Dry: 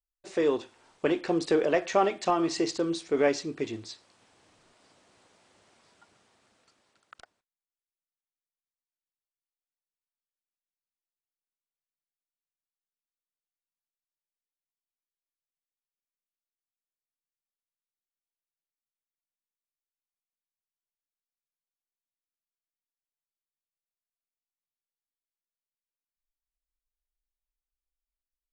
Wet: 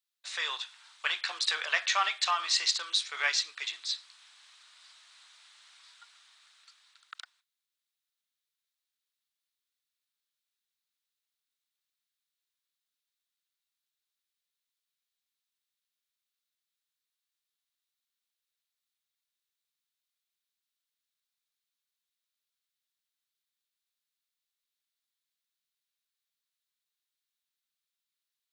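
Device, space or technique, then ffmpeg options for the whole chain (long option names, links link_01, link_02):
headphones lying on a table: -af "highpass=frequency=1200:width=0.5412,highpass=frequency=1200:width=1.3066,equalizer=frequency=3800:width_type=o:width=0.53:gain=9,volume=5.5dB"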